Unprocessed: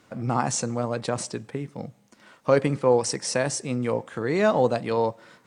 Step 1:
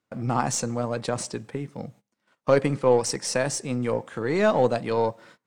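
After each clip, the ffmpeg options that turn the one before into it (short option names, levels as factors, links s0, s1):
-af "agate=range=0.0708:threshold=0.00398:ratio=16:detection=peak,aeval=exprs='0.473*(cos(1*acos(clip(val(0)/0.473,-1,1)))-cos(1*PI/2))+0.0106*(cos(8*acos(clip(val(0)/0.473,-1,1)))-cos(8*PI/2))':c=same"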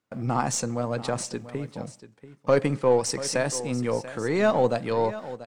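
-filter_complex "[0:a]aecho=1:1:687:0.178,asplit=2[s0][s1];[s1]asoftclip=type=hard:threshold=0.168,volume=0.316[s2];[s0][s2]amix=inputs=2:normalize=0,volume=0.708"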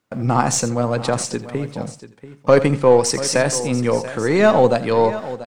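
-af "aecho=1:1:83:0.188,volume=2.51"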